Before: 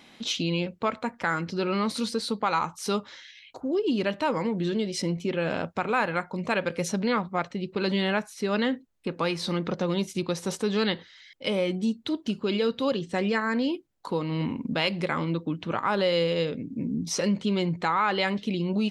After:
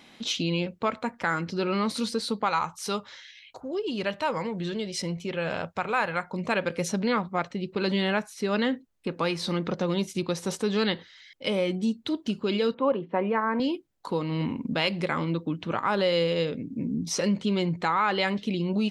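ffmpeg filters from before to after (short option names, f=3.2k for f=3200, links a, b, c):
-filter_complex "[0:a]asettb=1/sr,asplit=3[a][b][c];[a]atrim=end=2.494[d];[b]atrim=start=2.49:end=6.27,asetpts=PTS-STARTPTS,afade=t=in:d=0.004:c=qsin,afade=t=out:st=3.776:d=0.004:c=qsin,equalizer=f=280:w=1.4:g=-8[e];[c]atrim=start=6.266[f];[d][e]acrossfade=d=0.004:c1=hsin:c2=qsin[g];[g][f]acrossfade=d=0.004:c1=qsin:c2=hsin,asettb=1/sr,asplit=3[h][i][j];[h]atrim=end=12.744[k];[i]atrim=start=12.74:end=13.6,asetpts=PTS-STARTPTS,afade=t=in:d=0.004:c=qsin,afade=t=out:st=0.856:d=0.004:c=qsin,highpass=200,equalizer=f=580:t=q:w=4:g=3,equalizer=f=980:t=q:w=4:g=9,equalizer=f=1.8k:t=q:w=4:g=-6,lowpass=f=2.2k:w=0.5412,lowpass=f=2.2k:w=1.3066[l];[j]atrim=start=13.596[m];[k][l]acrossfade=d=0.004:c1=hsin:c2=qsin[n];[n][m]acrossfade=d=0.004:c1=qsin:c2=hsin"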